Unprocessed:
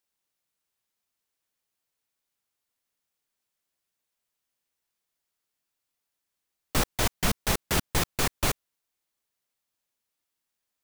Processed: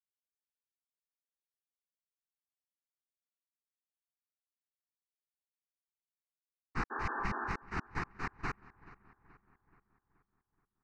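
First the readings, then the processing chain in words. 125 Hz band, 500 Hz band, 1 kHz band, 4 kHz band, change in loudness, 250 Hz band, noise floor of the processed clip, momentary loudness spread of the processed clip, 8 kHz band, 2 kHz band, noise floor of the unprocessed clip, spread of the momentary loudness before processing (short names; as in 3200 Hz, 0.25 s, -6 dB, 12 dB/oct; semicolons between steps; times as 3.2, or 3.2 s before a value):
-11.5 dB, -14.0 dB, -5.0 dB, -24.5 dB, -11.5 dB, -10.5 dB, under -85 dBFS, 7 LU, -31.0 dB, -6.5 dB, -84 dBFS, 3 LU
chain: expander -17 dBFS; tone controls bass -7 dB, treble -14 dB; fixed phaser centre 1400 Hz, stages 4; spectral repair 6.94–7.47, 220–1800 Hz after; LPF 5300 Hz 24 dB/oct; darkening echo 0.427 s, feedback 52%, low-pass 2800 Hz, level -21.5 dB; in parallel at -2.5 dB: compressor, threshold -49 dBFS, peak gain reduction 16 dB; on the sum: gain +1 dB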